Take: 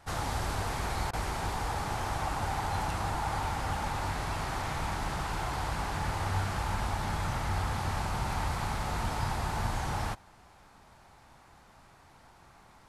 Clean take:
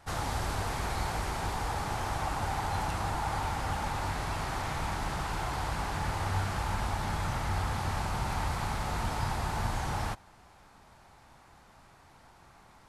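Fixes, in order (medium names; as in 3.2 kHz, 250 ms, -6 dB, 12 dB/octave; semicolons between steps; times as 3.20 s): interpolate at 1.11 s, 21 ms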